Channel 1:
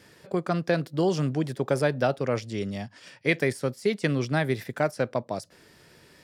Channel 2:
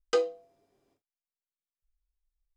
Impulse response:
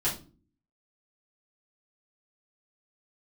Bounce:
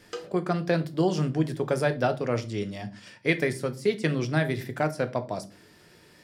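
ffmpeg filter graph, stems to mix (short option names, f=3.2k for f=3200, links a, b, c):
-filter_complex "[0:a]volume=-2.5dB,asplit=2[a][b];[b]volume=-14dB[c];[1:a]acompressor=threshold=-29dB:ratio=6,volume=-8.5dB,asplit=2[d][e];[e]volume=-5dB[f];[2:a]atrim=start_sample=2205[g];[c][f]amix=inputs=2:normalize=0[h];[h][g]afir=irnorm=-1:irlink=0[i];[a][d][i]amix=inputs=3:normalize=0"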